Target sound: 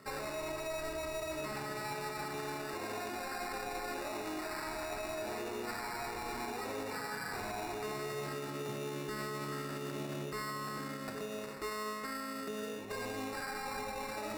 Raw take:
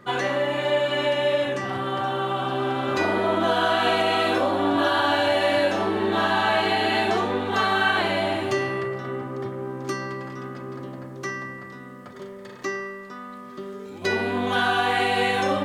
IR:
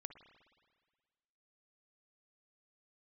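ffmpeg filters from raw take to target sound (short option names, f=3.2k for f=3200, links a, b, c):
-filter_complex "[0:a]highpass=93,acrusher=samples=15:mix=1:aa=0.000001,areverse,acompressor=threshold=-33dB:ratio=6,areverse,asetrate=48000,aresample=44100[a];[1:a]atrim=start_sample=2205,asetrate=34398,aresample=44100[b];[a][b]afir=irnorm=-1:irlink=0,alimiter=level_in=12.5dB:limit=-24dB:level=0:latency=1:release=79,volume=-12.5dB,volume=5dB"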